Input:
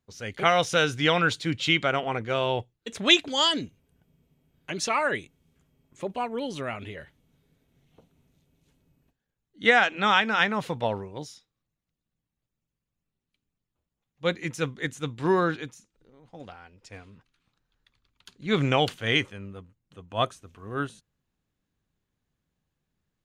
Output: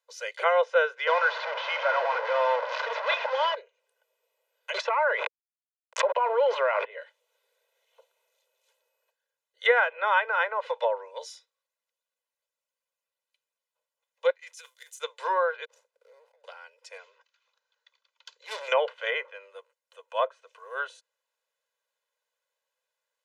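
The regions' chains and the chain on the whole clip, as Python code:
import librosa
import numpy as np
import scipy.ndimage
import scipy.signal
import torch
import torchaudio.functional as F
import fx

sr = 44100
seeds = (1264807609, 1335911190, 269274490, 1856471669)

y = fx.chain(x, sr, fx.delta_mod(bps=32000, step_db=-17.0),
    fx.highpass(hz=520.0, slope=24), at=(1.07, 3.55))
y = fx.chain(y, sr, fx.backlash(play_db=-41.5),
    fx.bandpass_edges(low_hz=590.0, high_hz=6800.0),
    fx.env_flatten(amount_pct=100), at=(4.74, 6.85))
y = fx.chain(y, sr, fx.law_mismatch(coded='A'),
    fx.differentiator(),
    fx.over_compress(threshold_db=-46.0, ratio=-0.5), at=(14.3, 15.0))
y = fx.chain(y, sr, fx.median_filter(points=41),
    fx.over_compress(threshold_db=-58.0, ratio=-1.0), at=(15.65, 16.44))
y = fx.chain(y, sr, fx.resample_bad(factor=3, down='none', up='filtered'),
    fx.overload_stage(gain_db=30.0), at=(16.98, 18.68))
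y = scipy.signal.sosfilt(scipy.signal.butter(12, 480.0, 'highpass', fs=sr, output='sos'), y)
y = fx.env_lowpass_down(y, sr, base_hz=1400.0, full_db=-24.0)
y = y + 0.73 * np.pad(y, (int(2.0 * sr / 1000.0), 0))[:len(y)]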